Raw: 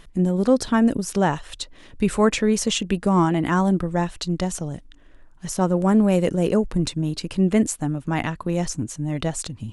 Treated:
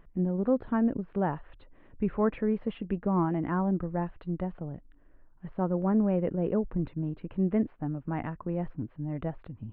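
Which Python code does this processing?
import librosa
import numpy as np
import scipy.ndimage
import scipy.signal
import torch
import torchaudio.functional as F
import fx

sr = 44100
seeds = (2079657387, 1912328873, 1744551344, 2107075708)

y = scipy.ndimage.gaussian_filter1d(x, 4.6, mode='constant')
y = F.gain(torch.from_numpy(y), -8.0).numpy()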